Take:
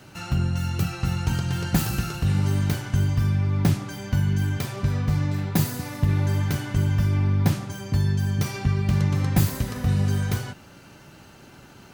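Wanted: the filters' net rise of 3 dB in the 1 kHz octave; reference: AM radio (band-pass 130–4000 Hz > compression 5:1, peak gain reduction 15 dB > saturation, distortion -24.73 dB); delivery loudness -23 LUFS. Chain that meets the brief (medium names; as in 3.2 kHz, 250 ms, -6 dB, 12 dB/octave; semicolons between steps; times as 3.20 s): band-pass 130–4000 Hz; peaking EQ 1 kHz +4 dB; compression 5:1, threshold -33 dBFS; saturation -24 dBFS; trim +14.5 dB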